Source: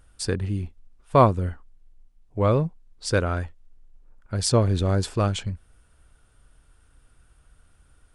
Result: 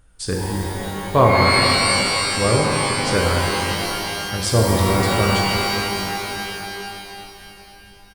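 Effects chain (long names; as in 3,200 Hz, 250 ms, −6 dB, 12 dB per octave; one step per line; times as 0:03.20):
pitch-shifted copies added −5 semitones −15 dB
reverb with rising layers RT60 3.1 s, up +12 semitones, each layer −2 dB, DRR −2 dB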